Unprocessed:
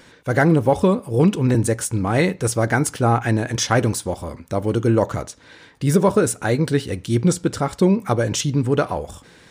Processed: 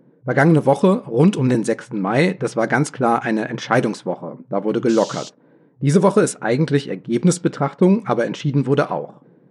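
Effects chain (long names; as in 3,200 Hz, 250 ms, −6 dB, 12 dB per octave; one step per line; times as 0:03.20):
low-pass that shuts in the quiet parts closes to 360 Hz, open at −12 dBFS
brick-wall band-pass 120–12,000 Hz
0:04.88–0:05.28: noise in a band 2,900–7,100 Hz −38 dBFS
level +2 dB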